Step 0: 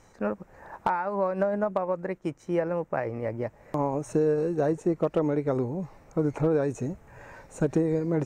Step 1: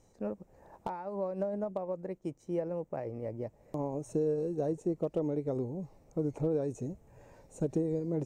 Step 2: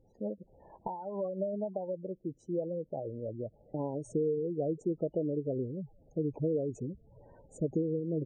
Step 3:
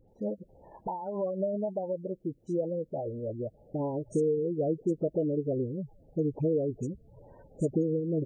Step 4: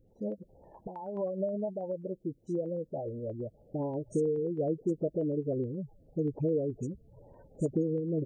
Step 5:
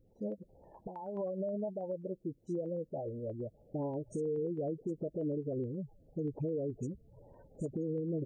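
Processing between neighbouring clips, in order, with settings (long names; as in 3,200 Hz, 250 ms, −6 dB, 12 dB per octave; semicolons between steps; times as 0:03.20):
drawn EQ curve 480 Hz 0 dB, 730 Hz −3 dB, 1,500 Hz −14 dB, 3,100 Hz −5 dB, 7,900 Hz 0 dB; level −6.5 dB
gate on every frequency bin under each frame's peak −15 dB strong
all-pass dispersion highs, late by 84 ms, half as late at 1,700 Hz; level +3.5 dB
notch on a step sequencer 9.4 Hz 930–2,700 Hz; level −1.5 dB
brickwall limiter −26 dBFS, peak gain reduction 7.5 dB; level −2.5 dB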